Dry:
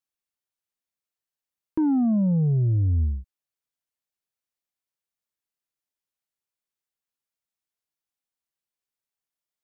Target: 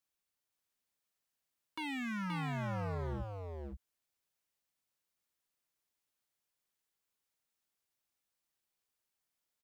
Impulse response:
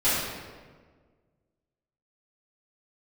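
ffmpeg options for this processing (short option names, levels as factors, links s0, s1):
-filter_complex "[0:a]acrossover=split=540[s0][s1];[s0]alimiter=level_in=1.41:limit=0.0631:level=0:latency=1:release=128,volume=0.708[s2];[s2][s1]amix=inputs=2:normalize=0,aeval=exprs='0.0133*(abs(mod(val(0)/0.0133+3,4)-2)-1)':c=same,aecho=1:1:525:0.596,volume=1.26"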